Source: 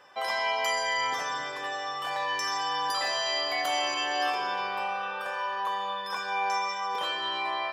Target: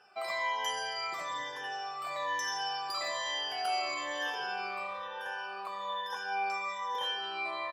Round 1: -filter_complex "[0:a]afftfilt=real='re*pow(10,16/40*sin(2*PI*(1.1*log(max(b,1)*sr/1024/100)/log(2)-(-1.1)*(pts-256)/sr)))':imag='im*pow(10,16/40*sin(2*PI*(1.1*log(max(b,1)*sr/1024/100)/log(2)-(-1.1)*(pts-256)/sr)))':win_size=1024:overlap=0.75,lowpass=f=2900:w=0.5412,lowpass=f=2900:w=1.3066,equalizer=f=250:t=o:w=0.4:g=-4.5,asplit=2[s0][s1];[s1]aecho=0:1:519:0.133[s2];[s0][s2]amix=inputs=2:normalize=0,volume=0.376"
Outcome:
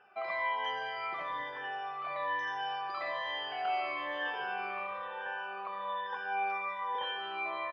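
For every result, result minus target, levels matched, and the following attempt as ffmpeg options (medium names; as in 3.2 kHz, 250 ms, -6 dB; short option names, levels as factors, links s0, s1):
4 kHz band -5.0 dB; echo-to-direct +7 dB
-filter_complex "[0:a]afftfilt=real='re*pow(10,16/40*sin(2*PI*(1.1*log(max(b,1)*sr/1024/100)/log(2)-(-1.1)*(pts-256)/sr)))':imag='im*pow(10,16/40*sin(2*PI*(1.1*log(max(b,1)*sr/1024/100)/log(2)-(-1.1)*(pts-256)/sr)))':win_size=1024:overlap=0.75,equalizer=f=250:t=o:w=0.4:g=-4.5,asplit=2[s0][s1];[s1]aecho=0:1:519:0.133[s2];[s0][s2]amix=inputs=2:normalize=0,volume=0.376"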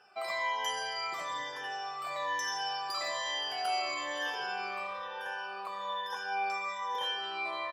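echo-to-direct +7 dB
-filter_complex "[0:a]afftfilt=real='re*pow(10,16/40*sin(2*PI*(1.1*log(max(b,1)*sr/1024/100)/log(2)-(-1.1)*(pts-256)/sr)))':imag='im*pow(10,16/40*sin(2*PI*(1.1*log(max(b,1)*sr/1024/100)/log(2)-(-1.1)*(pts-256)/sr)))':win_size=1024:overlap=0.75,equalizer=f=250:t=o:w=0.4:g=-4.5,asplit=2[s0][s1];[s1]aecho=0:1:519:0.0596[s2];[s0][s2]amix=inputs=2:normalize=0,volume=0.376"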